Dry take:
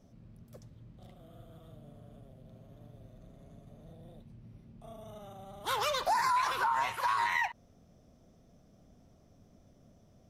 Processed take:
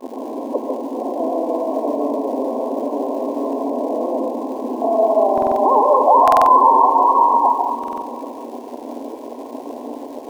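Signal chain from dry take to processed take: in parallel at -5 dB: fuzz box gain 54 dB, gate -59 dBFS; on the sum: FFT band-pass 230–1100 Hz; crackle 270 per s -41 dBFS; two-band feedback delay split 480 Hz, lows 414 ms, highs 231 ms, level -10 dB; on a send at -2 dB: reverberation RT60 0.25 s, pre-delay 137 ms; on the sum: buffer glitch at 5.33/6.23/7.79 s, samples 2048, times 4; trim +5 dB

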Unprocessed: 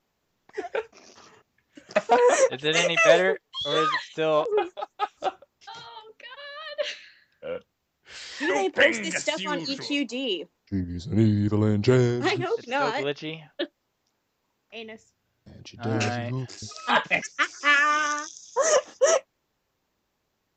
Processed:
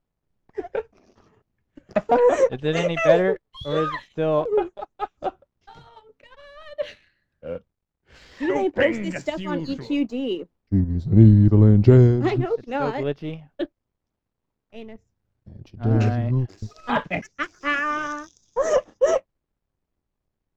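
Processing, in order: companding laws mixed up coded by A; tilt EQ -4 dB/octave; trim -1 dB

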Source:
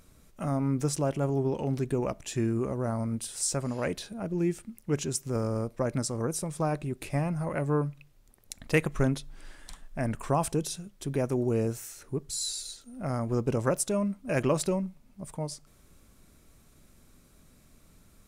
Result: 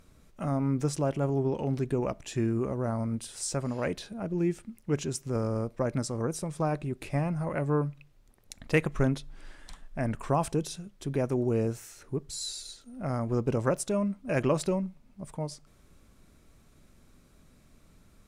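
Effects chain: treble shelf 7.6 kHz -9.5 dB

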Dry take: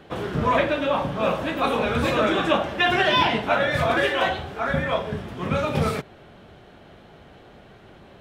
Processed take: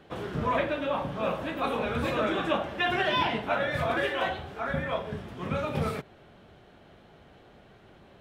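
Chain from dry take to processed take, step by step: dynamic bell 6.1 kHz, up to -4 dB, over -42 dBFS, Q 0.87; trim -6.5 dB

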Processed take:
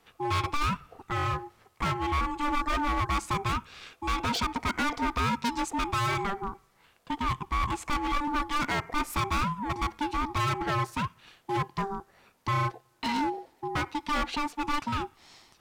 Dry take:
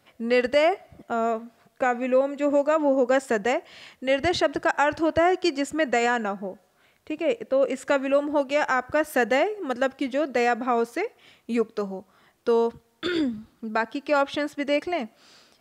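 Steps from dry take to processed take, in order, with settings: ring modulator 590 Hz; hard clipper -26 dBFS, distortion -7 dB; trim +2 dB

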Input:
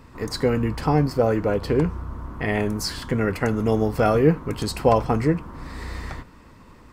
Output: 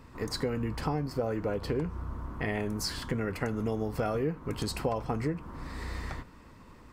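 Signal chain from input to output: compression 5:1, threshold -23 dBFS, peak gain reduction 11 dB; trim -4.5 dB

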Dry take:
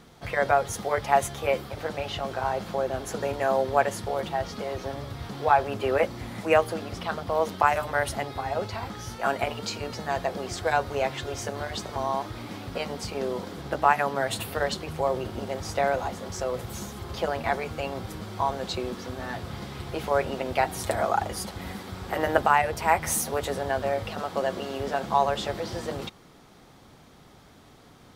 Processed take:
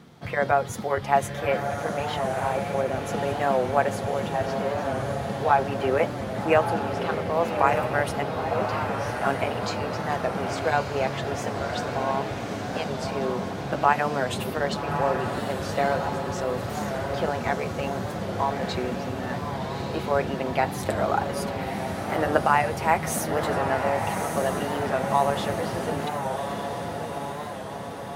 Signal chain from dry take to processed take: high-pass 130 Hz 12 dB/octave; tone controls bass +8 dB, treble -4 dB; echo that smears into a reverb 1181 ms, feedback 63%, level -5.5 dB; warped record 45 rpm, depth 100 cents

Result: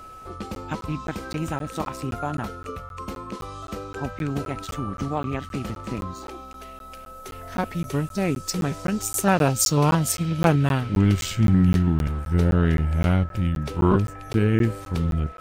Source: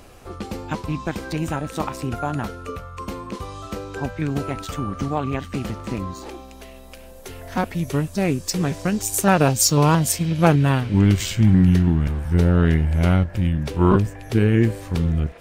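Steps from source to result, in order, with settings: whistle 1.3 kHz -37 dBFS; crackling interface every 0.26 s, samples 512, zero, from 0.55 s; trim -3 dB

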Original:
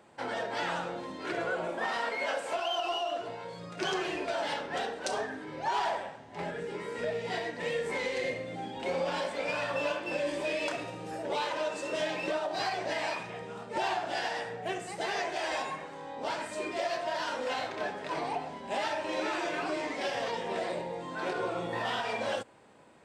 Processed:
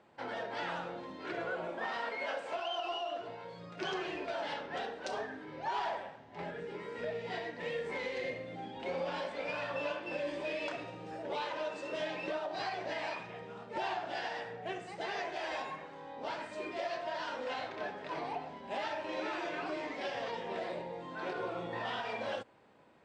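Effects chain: low-pass 4.7 kHz 12 dB/octave; trim -5 dB

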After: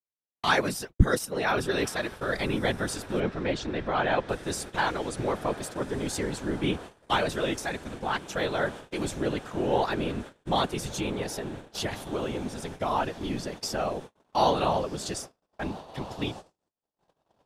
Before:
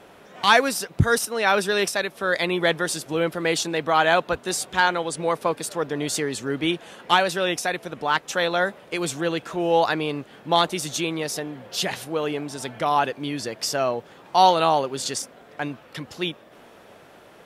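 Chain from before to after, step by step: whisper effect; bass shelf 270 Hz +10 dB; on a send: echo that smears into a reverb 1510 ms, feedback 67%, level -16 dB; on the sum: gate -31 dBFS, range -57 dB; 3.20–4.29 s: distance through air 130 m; trim -8 dB

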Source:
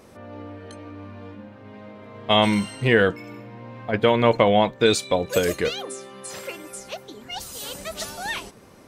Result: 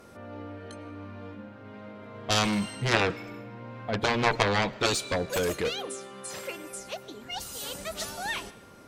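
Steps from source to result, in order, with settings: Chebyshev shaper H 3 -8 dB, 7 -20 dB, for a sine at -3.5 dBFS; whistle 1.4 kHz -55 dBFS; algorithmic reverb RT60 1 s, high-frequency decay 0.9×, pre-delay 70 ms, DRR 20 dB; trim -1.5 dB

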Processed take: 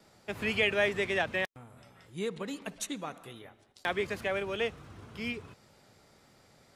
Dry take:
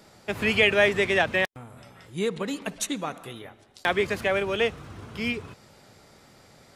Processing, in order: gate with hold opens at -47 dBFS; trim -7.5 dB

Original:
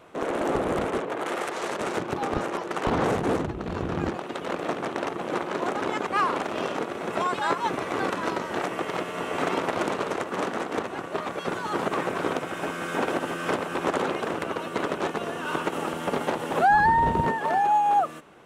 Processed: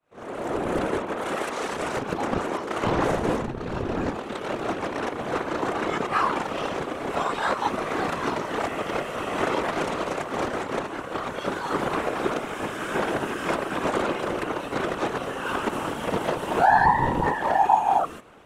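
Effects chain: fade-in on the opening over 0.81 s; reverse echo 32 ms -6 dB; whisper effect

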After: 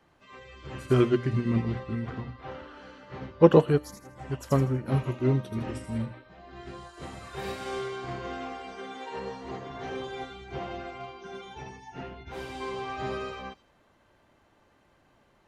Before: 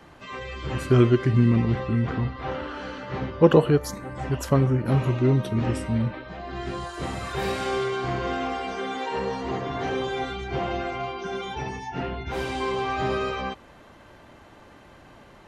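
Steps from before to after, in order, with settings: hum notches 60/120/180/240/300 Hz; feedback echo behind a high-pass 80 ms, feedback 35%, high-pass 5 kHz, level -3.5 dB; upward expansion 1.5:1, over -39 dBFS

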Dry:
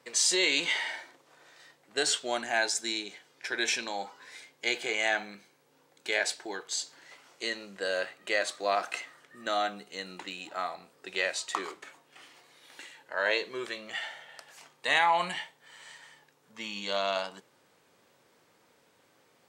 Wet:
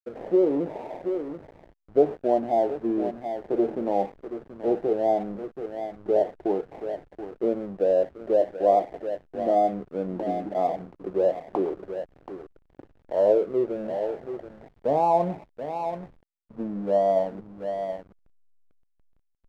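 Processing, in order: sorted samples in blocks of 8 samples; steep low-pass 720 Hz 36 dB/octave; delay 729 ms -12 dB; in parallel at +2.5 dB: gain riding within 4 dB 0.5 s; on the sum: hysteresis with a dead band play -43 dBFS; trim +6.5 dB

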